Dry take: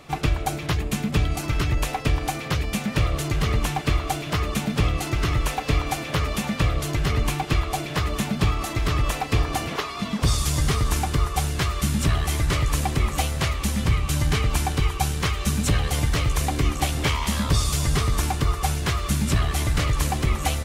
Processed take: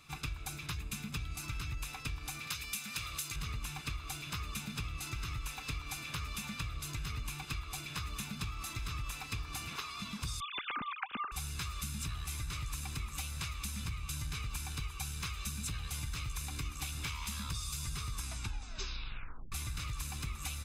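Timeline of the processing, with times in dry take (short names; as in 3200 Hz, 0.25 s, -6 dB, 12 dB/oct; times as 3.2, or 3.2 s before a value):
2.47–3.36 tilt +2.5 dB/oct
10.4–11.32 sine-wave speech
18.13 tape stop 1.39 s
whole clip: passive tone stack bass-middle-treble 5-5-5; comb 0.8 ms, depth 51%; compressor, threshold -34 dBFS; gain -1.5 dB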